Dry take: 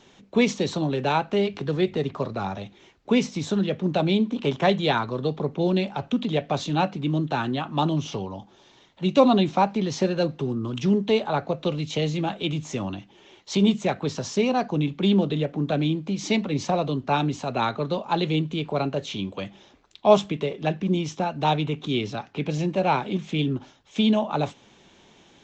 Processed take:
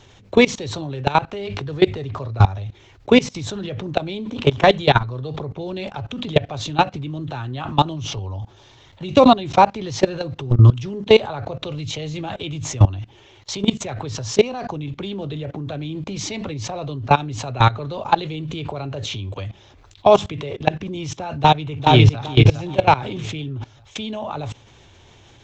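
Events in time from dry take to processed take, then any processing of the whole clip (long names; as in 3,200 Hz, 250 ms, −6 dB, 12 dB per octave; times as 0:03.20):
0:21.38–0:22.20: delay throw 410 ms, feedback 30%, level −1 dB
whole clip: low shelf with overshoot 140 Hz +9 dB, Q 3; output level in coarse steps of 21 dB; boost into a limiter +15 dB; level −1 dB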